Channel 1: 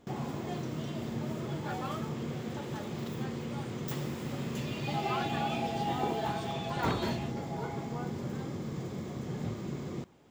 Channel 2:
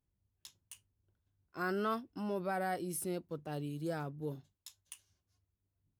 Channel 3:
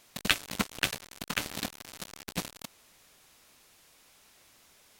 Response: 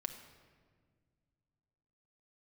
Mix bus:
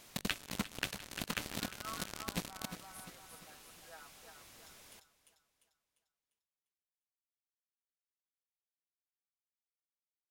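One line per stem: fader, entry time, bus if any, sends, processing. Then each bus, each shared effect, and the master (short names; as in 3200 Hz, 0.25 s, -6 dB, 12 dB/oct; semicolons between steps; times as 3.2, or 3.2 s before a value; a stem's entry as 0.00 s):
off
-11.0 dB, 0.00 s, no send, echo send -5.5 dB, HPF 860 Hz 24 dB/oct; tilt -1.5 dB/oct; comb 6.2 ms, depth 91%
+1.5 dB, 0.00 s, send -18 dB, echo send -16.5 dB, dry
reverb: on, RT60 1.8 s, pre-delay 5 ms
echo: feedback echo 0.348 s, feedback 43%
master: low shelf 350 Hz +4 dB; compressor 4:1, threshold -35 dBFS, peak gain reduction 16 dB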